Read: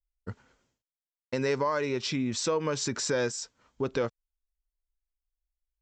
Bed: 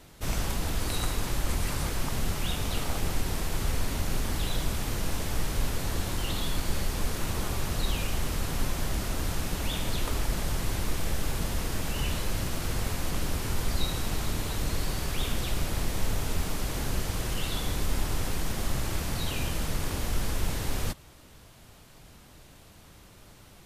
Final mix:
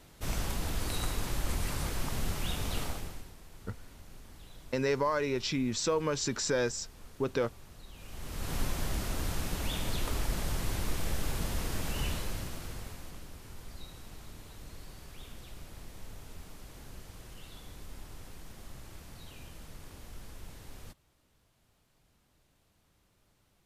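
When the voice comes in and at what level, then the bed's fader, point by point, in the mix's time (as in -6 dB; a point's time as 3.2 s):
3.40 s, -1.5 dB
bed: 2.84 s -4 dB
3.35 s -22 dB
7.91 s -22 dB
8.53 s -3.5 dB
12.06 s -3.5 dB
13.29 s -18 dB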